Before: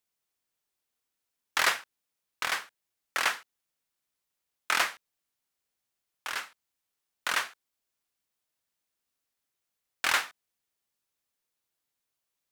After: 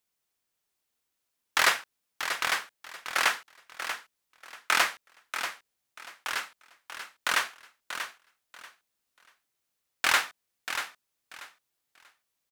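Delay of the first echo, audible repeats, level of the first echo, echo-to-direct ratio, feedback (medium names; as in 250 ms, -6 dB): 637 ms, 2, -9.0 dB, -9.0 dB, 22%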